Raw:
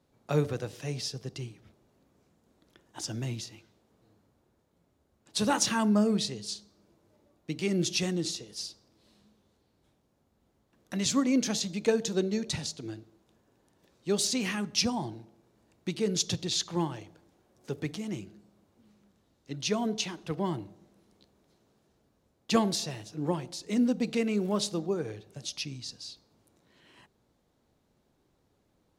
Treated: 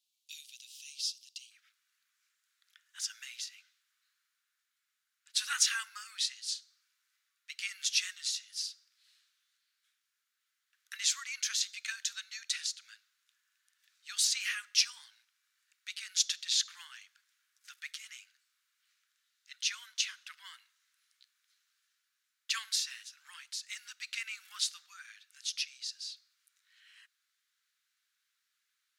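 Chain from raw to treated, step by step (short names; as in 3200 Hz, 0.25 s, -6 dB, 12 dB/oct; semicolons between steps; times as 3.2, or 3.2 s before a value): steep high-pass 2800 Hz 48 dB/oct, from 1.5 s 1400 Hz; gain +1 dB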